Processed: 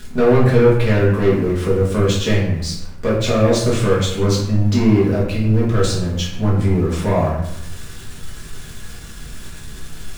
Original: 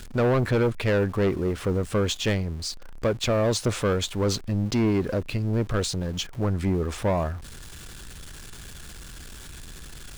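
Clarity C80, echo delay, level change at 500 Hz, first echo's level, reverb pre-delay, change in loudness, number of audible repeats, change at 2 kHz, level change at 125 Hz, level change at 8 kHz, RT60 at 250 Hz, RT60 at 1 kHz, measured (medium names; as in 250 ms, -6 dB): 6.5 dB, no echo, +8.5 dB, no echo, 4 ms, +8.5 dB, no echo, +6.5 dB, +9.5 dB, +4.5 dB, 1.1 s, 0.85 s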